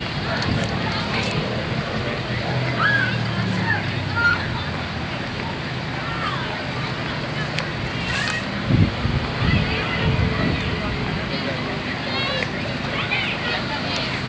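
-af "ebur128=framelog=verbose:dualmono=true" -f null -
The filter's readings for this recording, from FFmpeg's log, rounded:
Integrated loudness:
  I:         -19.5 LUFS
  Threshold: -29.5 LUFS
Loudness range:
  LRA:         3.3 LU
  Threshold: -39.4 LUFS
  LRA low:   -21.6 LUFS
  LRA high:  -18.3 LUFS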